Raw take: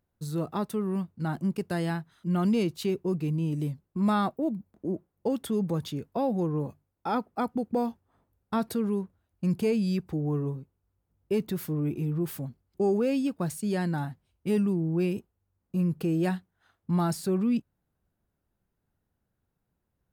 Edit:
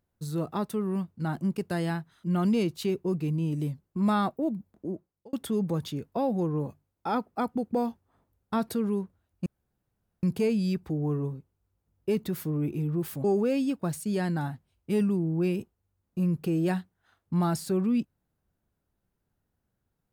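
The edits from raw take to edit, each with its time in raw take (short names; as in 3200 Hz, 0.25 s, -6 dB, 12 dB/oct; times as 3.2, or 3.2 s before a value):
4.72–5.33 fade out
9.46 insert room tone 0.77 s
12.47–12.81 cut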